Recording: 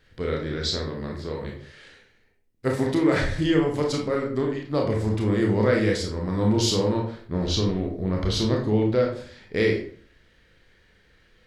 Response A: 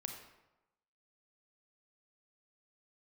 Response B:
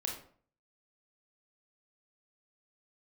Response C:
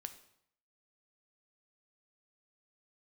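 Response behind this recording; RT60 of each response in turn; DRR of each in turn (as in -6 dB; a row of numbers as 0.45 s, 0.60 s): B; 1.0 s, 0.50 s, 0.70 s; 3.0 dB, 0.0 dB, 8.0 dB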